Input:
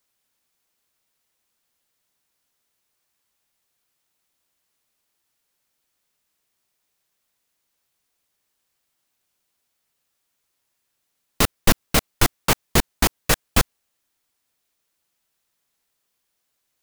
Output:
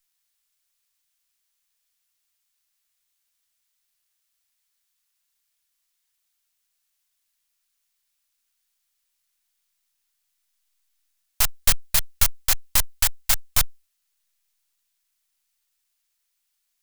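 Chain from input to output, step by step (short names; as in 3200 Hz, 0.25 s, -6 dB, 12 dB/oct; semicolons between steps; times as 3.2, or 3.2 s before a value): tracing distortion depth 0.43 ms; full-wave rectifier; passive tone stack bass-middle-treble 10-0-10; gain +5 dB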